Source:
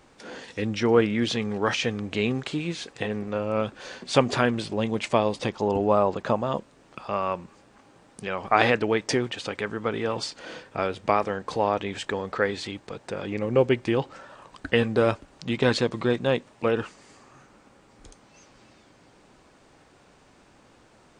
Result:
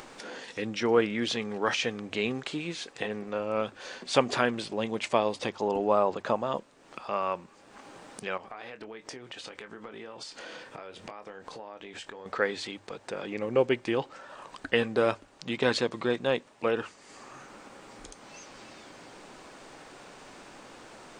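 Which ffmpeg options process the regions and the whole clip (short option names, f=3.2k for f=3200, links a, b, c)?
-filter_complex "[0:a]asettb=1/sr,asplit=3[a][b][c];[a]atrim=end=8.374[d];[b]atrim=start=8.37:end=12.26,asetpts=PTS-STARTPTS,afade=t=in:d=0.004:c=qsin,afade=t=out:st=3.886:d=0.004:c=qsin,acompressor=threshold=-39dB:ratio=5:attack=3.2:release=140:knee=1:detection=peak,asplit=2[e][f];[f]adelay=23,volume=-10dB[g];[e][g]amix=inputs=2:normalize=0,atrim=end_sample=171549[h];[c]atrim=start=12.256[i];[d][h]acrossfade=d=0.004:c1=hsin:c2=qsin[j];[j][i]acrossfade=d=0.004:c1=qsin:c2=hsin,equalizer=f=66:w=0.39:g=-11,bandreject=f=50:t=h:w=6,bandreject=f=100:t=h:w=6,acompressor=mode=upward:threshold=-35dB:ratio=2.5,volume=-2dB"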